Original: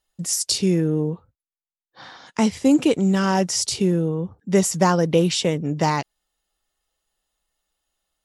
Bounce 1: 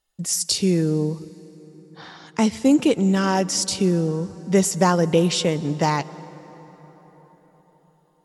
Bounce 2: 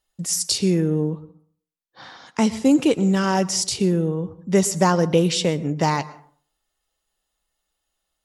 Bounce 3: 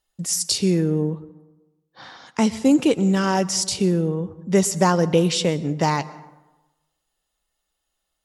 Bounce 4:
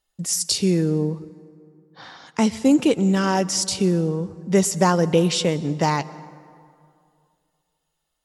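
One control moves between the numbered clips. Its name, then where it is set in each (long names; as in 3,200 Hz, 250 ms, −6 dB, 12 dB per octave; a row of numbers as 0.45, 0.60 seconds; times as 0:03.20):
dense smooth reverb, RT60: 5, 0.51, 1.1, 2.4 seconds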